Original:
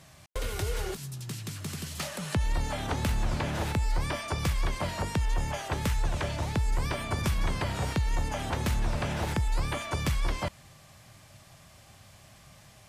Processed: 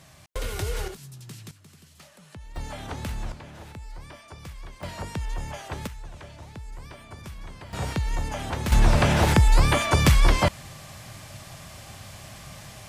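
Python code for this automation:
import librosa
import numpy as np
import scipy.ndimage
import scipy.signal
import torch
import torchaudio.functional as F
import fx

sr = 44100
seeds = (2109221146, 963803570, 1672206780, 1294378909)

y = fx.gain(x, sr, db=fx.steps((0.0, 2.0), (0.88, -4.5), (1.51, -15.5), (2.56, -4.0), (3.32, -12.5), (4.83, -3.0), (5.87, -12.0), (7.73, 1.0), (8.72, 11.0)))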